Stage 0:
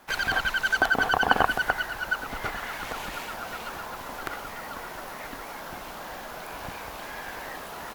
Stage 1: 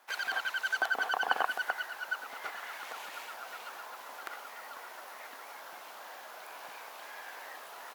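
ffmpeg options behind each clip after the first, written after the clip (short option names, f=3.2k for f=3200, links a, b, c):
-af "highpass=570,volume=-7.5dB"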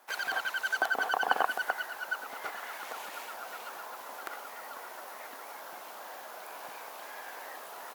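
-af "equalizer=f=2.7k:t=o:w=2.9:g=-6,volume=5.5dB"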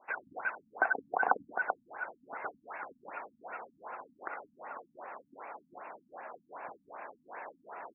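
-af "afftfilt=real='re*lt(b*sr/1024,260*pow(2800/260,0.5+0.5*sin(2*PI*2.6*pts/sr)))':imag='im*lt(b*sr/1024,260*pow(2800/260,0.5+0.5*sin(2*PI*2.6*pts/sr)))':win_size=1024:overlap=0.75,volume=1dB"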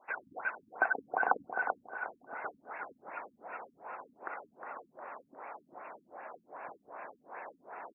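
-af "aecho=1:1:359|718|1077:0.316|0.0949|0.0285,volume=-1dB"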